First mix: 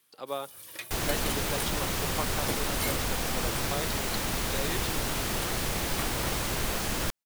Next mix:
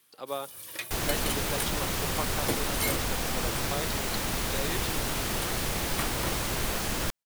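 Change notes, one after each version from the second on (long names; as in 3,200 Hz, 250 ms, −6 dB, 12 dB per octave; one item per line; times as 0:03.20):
first sound +3.5 dB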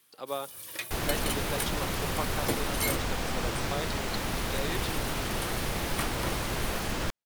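second sound: add low-pass filter 4,000 Hz 6 dB per octave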